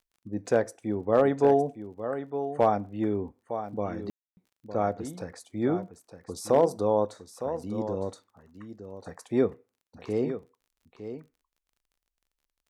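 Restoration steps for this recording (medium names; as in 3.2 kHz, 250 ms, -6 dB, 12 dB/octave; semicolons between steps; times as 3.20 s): clip repair -12 dBFS; de-click; room tone fill 4.10–4.37 s; inverse comb 910 ms -10.5 dB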